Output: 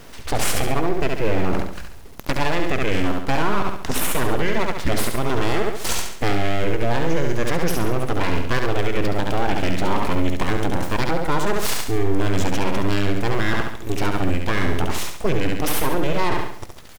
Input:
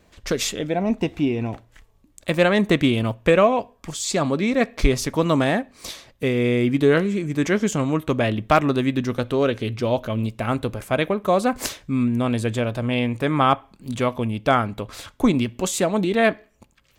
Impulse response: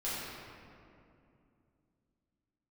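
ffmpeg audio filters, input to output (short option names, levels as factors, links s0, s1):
-filter_complex "[0:a]areverse,acompressor=threshold=0.0355:ratio=10,areverse,asetrate=36028,aresample=44100,atempo=1.22405,aeval=exprs='abs(val(0))':c=same,acrusher=bits=8:dc=4:mix=0:aa=0.000001,asplit=2[s0][s1];[s1]aecho=0:1:69|138|207|276|345:0.531|0.228|0.0982|0.0422|0.0181[s2];[s0][s2]amix=inputs=2:normalize=0,alimiter=level_in=14.1:limit=0.891:release=50:level=0:latency=1,volume=0.447"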